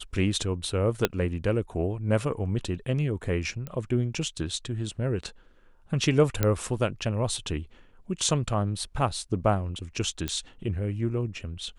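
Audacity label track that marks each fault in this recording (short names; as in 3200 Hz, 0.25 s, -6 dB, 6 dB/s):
1.050000	1.050000	pop -7 dBFS
3.670000	3.670000	pop -22 dBFS
6.430000	6.430000	pop -9 dBFS
10.280000	10.280000	pop -14 dBFS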